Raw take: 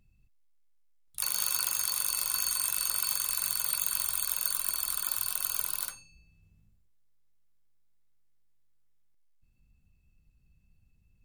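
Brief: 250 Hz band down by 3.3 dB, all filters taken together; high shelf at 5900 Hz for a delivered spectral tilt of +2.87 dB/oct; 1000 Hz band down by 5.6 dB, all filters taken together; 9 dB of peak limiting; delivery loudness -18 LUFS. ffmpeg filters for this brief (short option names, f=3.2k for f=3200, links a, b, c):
-af "equalizer=f=250:t=o:g=-5,equalizer=f=1k:t=o:g=-7,highshelf=f=5.9k:g=4.5,volume=10dB,alimiter=limit=-2.5dB:level=0:latency=1"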